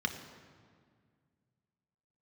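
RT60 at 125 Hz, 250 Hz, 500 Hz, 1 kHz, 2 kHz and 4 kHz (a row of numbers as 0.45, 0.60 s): 2.9, 2.6, 2.0, 1.8, 1.6, 1.3 s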